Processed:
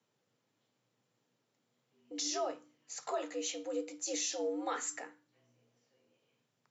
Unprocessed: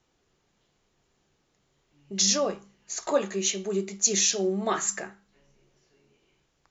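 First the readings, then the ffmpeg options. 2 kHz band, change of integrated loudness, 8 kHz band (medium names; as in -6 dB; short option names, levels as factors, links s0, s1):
-10.0 dB, -12.0 dB, no reading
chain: -af "alimiter=limit=0.141:level=0:latency=1:release=24,bandreject=f=6500:w=23,afreqshift=100,volume=0.355"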